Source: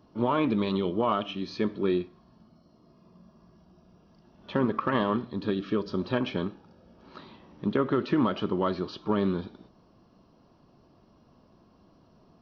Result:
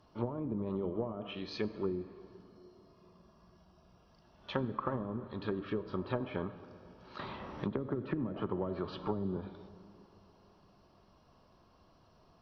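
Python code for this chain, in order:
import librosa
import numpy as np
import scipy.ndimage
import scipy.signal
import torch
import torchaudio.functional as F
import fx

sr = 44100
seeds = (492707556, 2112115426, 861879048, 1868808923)

y = fx.env_lowpass_down(x, sr, base_hz=300.0, full_db=-21.0)
y = fx.peak_eq(y, sr, hz=240.0, db=-10.5, octaves=1.9)
y = fx.rev_plate(y, sr, seeds[0], rt60_s=3.5, hf_ratio=0.5, predelay_ms=0, drr_db=13.0)
y = fx.band_squash(y, sr, depth_pct=70, at=(7.19, 9.37))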